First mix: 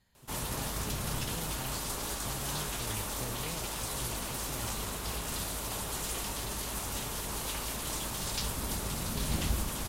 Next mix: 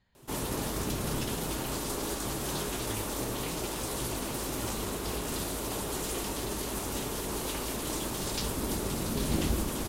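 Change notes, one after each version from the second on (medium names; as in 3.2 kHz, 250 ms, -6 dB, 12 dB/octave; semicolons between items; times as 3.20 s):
speech: add low-pass 3.9 kHz; background: add peaking EQ 340 Hz +10 dB 1.4 oct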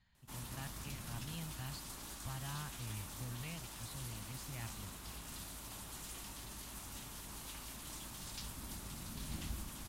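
background -12.0 dB; master: add peaking EQ 430 Hz -15 dB 1.2 oct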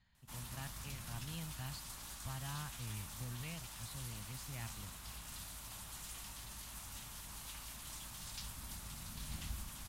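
background: add peaking EQ 340 Hz -10 dB 1.4 oct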